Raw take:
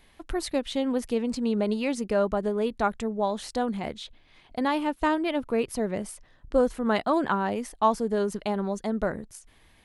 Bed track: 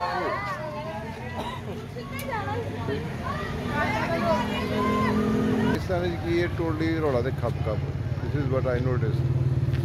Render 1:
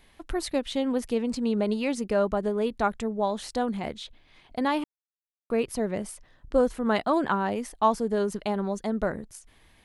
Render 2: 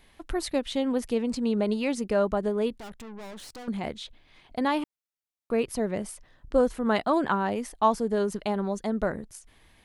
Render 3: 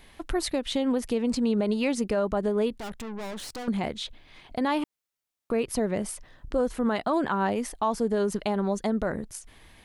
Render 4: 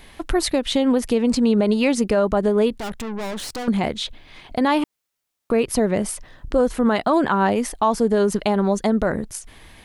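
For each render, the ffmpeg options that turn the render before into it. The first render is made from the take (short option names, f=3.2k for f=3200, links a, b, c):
-filter_complex "[0:a]asplit=3[a][b][c];[a]atrim=end=4.84,asetpts=PTS-STARTPTS,afade=t=out:st=4.836:d=0.004:c=hsin[d];[b]atrim=start=4.84:end=5.5,asetpts=PTS-STARTPTS,volume=0[e];[c]atrim=start=5.5,asetpts=PTS-STARTPTS,afade=t=in:d=0.004:c=hsin[f];[d][e][f]concat=n=3:v=0:a=1"
-filter_complex "[0:a]asettb=1/sr,asplit=3[a][b][c];[a]atrim=end=2.784[d];[b]atrim=start=2.78:end=3.68,asetpts=PTS-STARTPTS,afade=t=in:d=0.004:c=qsin,afade=t=out:st=0.896:d=0.004:c=qsin,aeval=exprs='(tanh(100*val(0)+0.65)-tanh(0.65))/100':c=same[e];[c]atrim=start=3.676[f];[d][e]acrossfade=d=0.004:c1=hsin:c2=qsin[g];[g][f]acrossfade=d=0.004:c1=qsin:c2=hsin"
-filter_complex "[0:a]asplit=2[a][b];[b]acompressor=threshold=-32dB:ratio=6,volume=-1dB[c];[a][c]amix=inputs=2:normalize=0,alimiter=limit=-16.5dB:level=0:latency=1:release=99"
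-af "volume=7.5dB"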